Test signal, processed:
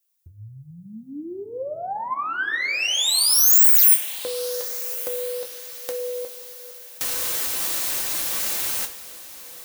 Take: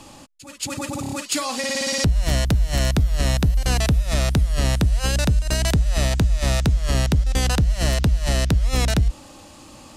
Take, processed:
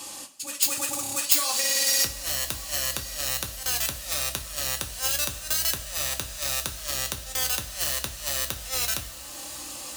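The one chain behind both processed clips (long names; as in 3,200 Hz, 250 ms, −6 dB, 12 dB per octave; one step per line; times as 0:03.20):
stylus tracing distortion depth 0.057 ms
dynamic equaliser 240 Hz, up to −6 dB, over −35 dBFS, Q 0.91
downward compressor 2 to 1, threshold −33 dBFS
RIAA equalisation recording
on a send: feedback delay with all-pass diffusion 1,222 ms, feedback 46%, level −15.5 dB
on the sum: coupled-rooms reverb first 0.22 s, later 2.1 s, from −19 dB, DRR 3 dB
level −1 dB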